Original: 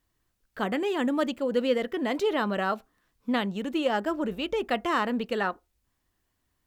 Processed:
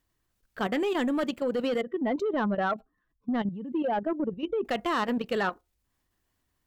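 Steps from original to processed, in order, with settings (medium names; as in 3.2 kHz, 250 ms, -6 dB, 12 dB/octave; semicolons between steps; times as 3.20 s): 1.81–4.65 s: spectral contrast enhancement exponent 1.8; saturation -21 dBFS, distortion -16 dB; level held to a coarse grid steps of 10 dB; trim +3.5 dB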